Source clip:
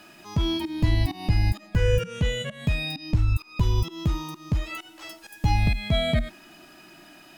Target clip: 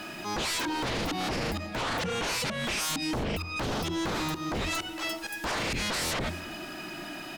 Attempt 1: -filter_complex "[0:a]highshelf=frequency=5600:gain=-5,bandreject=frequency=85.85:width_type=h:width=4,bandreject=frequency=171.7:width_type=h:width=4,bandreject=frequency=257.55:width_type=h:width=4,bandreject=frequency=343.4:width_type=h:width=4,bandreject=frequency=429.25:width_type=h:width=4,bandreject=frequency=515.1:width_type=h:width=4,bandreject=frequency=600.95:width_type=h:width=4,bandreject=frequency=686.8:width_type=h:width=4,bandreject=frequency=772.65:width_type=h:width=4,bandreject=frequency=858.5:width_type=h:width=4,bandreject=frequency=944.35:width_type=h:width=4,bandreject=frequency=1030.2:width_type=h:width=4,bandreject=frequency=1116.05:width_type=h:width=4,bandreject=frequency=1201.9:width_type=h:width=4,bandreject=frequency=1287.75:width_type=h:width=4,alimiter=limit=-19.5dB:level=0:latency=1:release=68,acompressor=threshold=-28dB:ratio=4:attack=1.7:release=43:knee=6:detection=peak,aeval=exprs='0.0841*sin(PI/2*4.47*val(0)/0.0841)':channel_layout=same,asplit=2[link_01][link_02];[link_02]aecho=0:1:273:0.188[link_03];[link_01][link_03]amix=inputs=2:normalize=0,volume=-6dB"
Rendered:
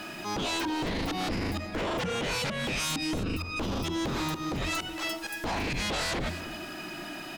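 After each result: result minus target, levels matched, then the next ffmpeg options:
downward compressor: peak gain reduction +6 dB; echo-to-direct +6 dB
-filter_complex "[0:a]highshelf=frequency=5600:gain=-5,bandreject=frequency=85.85:width_type=h:width=4,bandreject=frequency=171.7:width_type=h:width=4,bandreject=frequency=257.55:width_type=h:width=4,bandreject=frequency=343.4:width_type=h:width=4,bandreject=frequency=429.25:width_type=h:width=4,bandreject=frequency=515.1:width_type=h:width=4,bandreject=frequency=600.95:width_type=h:width=4,bandreject=frequency=686.8:width_type=h:width=4,bandreject=frequency=772.65:width_type=h:width=4,bandreject=frequency=858.5:width_type=h:width=4,bandreject=frequency=944.35:width_type=h:width=4,bandreject=frequency=1030.2:width_type=h:width=4,bandreject=frequency=1116.05:width_type=h:width=4,bandreject=frequency=1201.9:width_type=h:width=4,bandreject=frequency=1287.75:width_type=h:width=4,alimiter=limit=-19.5dB:level=0:latency=1:release=68,aeval=exprs='0.0841*sin(PI/2*4.47*val(0)/0.0841)':channel_layout=same,asplit=2[link_01][link_02];[link_02]aecho=0:1:273:0.188[link_03];[link_01][link_03]amix=inputs=2:normalize=0,volume=-6dB"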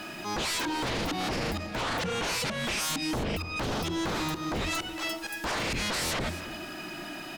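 echo-to-direct +6 dB
-filter_complex "[0:a]highshelf=frequency=5600:gain=-5,bandreject=frequency=85.85:width_type=h:width=4,bandreject=frequency=171.7:width_type=h:width=4,bandreject=frequency=257.55:width_type=h:width=4,bandreject=frequency=343.4:width_type=h:width=4,bandreject=frequency=429.25:width_type=h:width=4,bandreject=frequency=515.1:width_type=h:width=4,bandreject=frequency=600.95:width_type=h:width=4,bandreject=frequency=686.8:width_type=h:width=4,bandreject=frequency=772.65:width_type=h:width=4,bandreject=frequency=858.5:width_type=h:width=4,bandreject=frequency=944.35:width_type=h:width=4,bandreject=frequency=1030.2:width_type=h:width=4,bandreject=frequency=1116.05:width_type=h:width=4,bandreject=frequency=1201.9:width_type=h:width=4,bandreject=frequency=1287.75:width_type=h:width=4,alimiter=limit=-19.5dB:level=0:latency=1:release=68,aeval=exprs='0.0841*sin(PI/2*4.47*val(0)/0.0841)':channel_layout=same,asplit=2[link_01][link_02];[link_02]aecho=0:1:273:0.0944[link_03];[link_01][link_03]amix=inputs=2:normalize=0,volume=-6dB"

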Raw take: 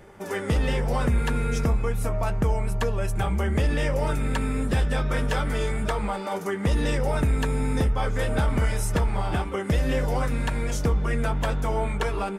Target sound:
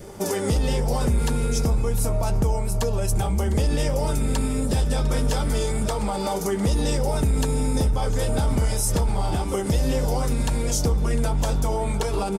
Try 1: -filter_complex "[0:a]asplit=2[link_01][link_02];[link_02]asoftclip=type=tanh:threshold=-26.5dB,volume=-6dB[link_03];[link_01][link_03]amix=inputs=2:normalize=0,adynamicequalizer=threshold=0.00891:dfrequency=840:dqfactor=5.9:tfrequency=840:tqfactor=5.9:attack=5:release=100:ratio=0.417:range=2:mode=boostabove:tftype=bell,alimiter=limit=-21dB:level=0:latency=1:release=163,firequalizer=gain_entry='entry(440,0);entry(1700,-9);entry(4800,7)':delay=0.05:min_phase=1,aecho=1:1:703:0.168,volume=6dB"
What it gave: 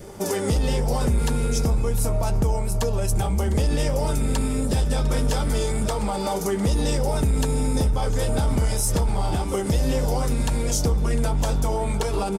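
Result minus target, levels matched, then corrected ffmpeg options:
soft clipping: distortion +13 dB
-filter_complex "[0:a]asplit=2[link_01][link_02];[link_02]asoftclip=type=tanh:threshold=-16dB,volume=-6dB[link_03];[link_01][link_03]amix=inputs=2:normalize=0,adynamicequalizer=threshold=0.00891:dfrequency=840:dqfactor=5.9:tfrequency=840:tqfactor=5.9:attack=5:release=100:ratio=0.417:range=2:mode=boostabove:tftype=bell,alimiter=limit=-21dB:level=0:latency=1:release=163,firequalizer=gain_entry='entry(440,0);entry(1700,-9);entry(4800,7)':delay=0.05:min_phase=1,aecho=1:1:703:0.168,volume=6dB"

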